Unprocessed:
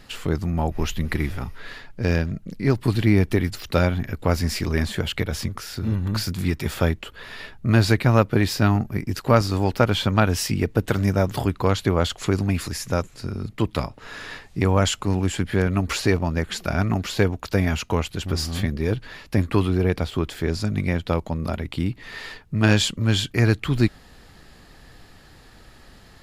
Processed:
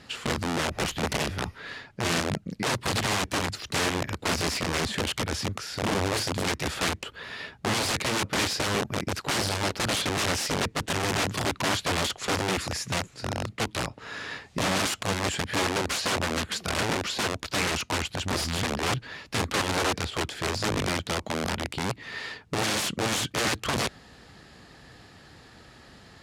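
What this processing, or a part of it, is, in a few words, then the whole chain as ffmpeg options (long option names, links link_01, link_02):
overflowing digital effects unit: -af "aeval=exprs='(mod(10.6*val(0)+1,2)-1)/10.6':channel_layout=same,highpass=79,lowpass=8700"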